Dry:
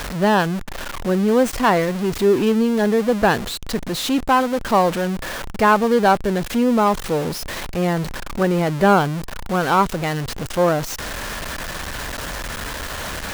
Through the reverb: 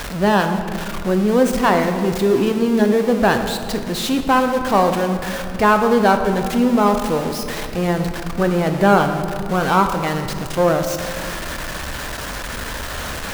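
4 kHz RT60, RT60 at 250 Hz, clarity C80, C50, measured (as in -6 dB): 1.4 s, 2.7 s, 8.5 dB, 7.0 dB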